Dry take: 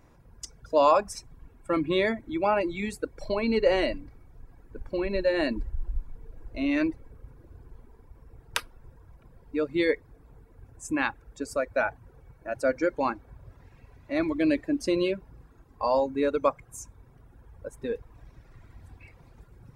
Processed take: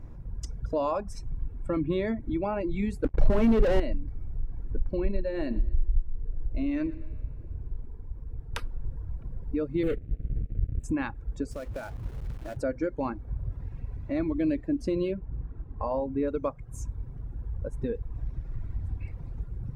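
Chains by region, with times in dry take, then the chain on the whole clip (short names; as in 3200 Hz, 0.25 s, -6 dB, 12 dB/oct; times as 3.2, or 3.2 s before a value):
3.04–3.8 LPF 2600 Hz + sample leveller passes 5 + compressor 1.5:1, threshold -19 dBFS
5.11–8.57 resonator 88 Hz, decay 1.9 s, mix 40% + feedback echo 0.116 s, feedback 26%, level -19 dB
9.83–10.84 median filter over 41 samples + sample leveller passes 3 + fixed phaser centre 2300 Hz, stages 4
11.51–12.57 compressor 2.5:1, threshold -41 dBFS + companded quantiser 4-bit + mismatched tape noise reduction encoder only
15.14–16.28 LPF 2800 Hz + de-hum 244.5 Hz, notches 11
whole clip: tilt -2 dB/oct; compressor 2:1, threshold -35 dBFS; low shelf 240 Hz +9.5 dB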